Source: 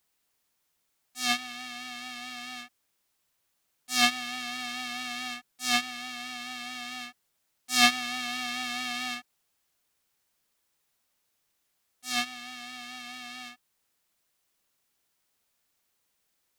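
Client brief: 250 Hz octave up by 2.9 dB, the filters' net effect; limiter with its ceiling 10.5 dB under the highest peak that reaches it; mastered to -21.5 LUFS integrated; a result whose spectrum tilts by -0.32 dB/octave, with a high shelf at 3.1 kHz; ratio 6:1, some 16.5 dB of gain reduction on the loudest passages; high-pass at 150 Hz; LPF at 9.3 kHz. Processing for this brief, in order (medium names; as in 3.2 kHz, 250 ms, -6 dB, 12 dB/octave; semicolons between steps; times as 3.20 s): high-pass 150 Hz; low-pass 9.3 kHz; peaking EQ 250 Hz +3.5 dB; treble shelf 3.1 kHz -4.5 dB; compression 6:1, threshold -33 dBFS; trim +21.5 dB; peak limiter -8.5 dBFS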